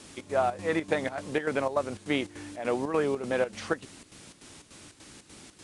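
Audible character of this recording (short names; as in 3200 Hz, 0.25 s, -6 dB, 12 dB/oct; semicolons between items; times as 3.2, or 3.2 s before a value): a quantiser's noise floor 8-bit, dither triangular; chopped level 3.4 Hz, depth 65%, duty 70%; AAC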